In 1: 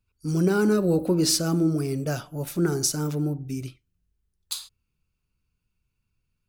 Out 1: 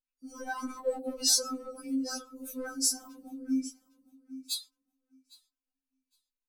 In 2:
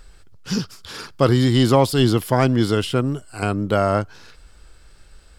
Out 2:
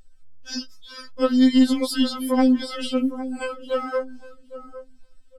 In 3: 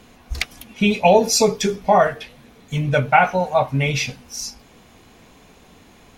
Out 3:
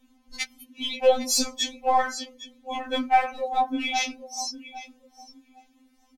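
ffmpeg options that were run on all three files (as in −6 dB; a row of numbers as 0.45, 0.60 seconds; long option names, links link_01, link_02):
-filter_complex "[0:a]asplit=2[link_01][link_02];[link_02]aecho=0:1:808|1616|2424:0.2|0.0499|0.0125[link_03];[link_01][link_03]amix=inputs=2:normalize=0,afftdn=noise_reduction=16:noise_floor=-37,asplit=2[link_04][link_05];[link_05]aeval=exprs='clip(val(0),-1,0.141)':channel_layout=same,volume=-7dB[link_06];[link_04][link_06]amix=inputs=2:normalize=0,highshelf=frequency=3100:gain=6,alimiter=level_in=1.5dB:limit=-1dB:release=50:level=0:latency=1,afftfilt=real='re*3.46*eq(mod(b,12),0)':imag='im*3.46*eq(mod(b,12),0)':win_size=2048:overlap=0.75,volume=-7.5dB"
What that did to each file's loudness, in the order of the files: −6.5, −3.0, −7.0 LU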